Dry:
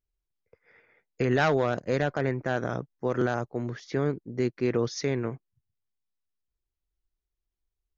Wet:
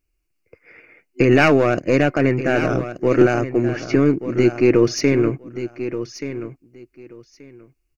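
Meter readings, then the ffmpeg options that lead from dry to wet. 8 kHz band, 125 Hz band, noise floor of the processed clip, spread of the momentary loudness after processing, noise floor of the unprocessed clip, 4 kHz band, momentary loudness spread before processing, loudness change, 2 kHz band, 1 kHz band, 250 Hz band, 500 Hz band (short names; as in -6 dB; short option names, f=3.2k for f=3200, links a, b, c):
n/a, +8.5 dB, -71 dBFS, 14 LU, under -85 dBFS, +9.5 dB, 9 LU, +10.5 dB, +10.5 dB, +7.5 dB, +13.5 dB, +11.0 dB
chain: -filter_complex "[0:a]asplit=2[a][b];[b]aeval=exprs='clip(val(0),-1,0.02)':c=same,volume=-3dB[c];[a][c]amix=inputs=2:normalize=0,superequalizer=6b=2.51:9b=0.631:12b=2.24:13b=0.355,aecho=1:1:1180|2360:0.266|0.0452,volume=6dB"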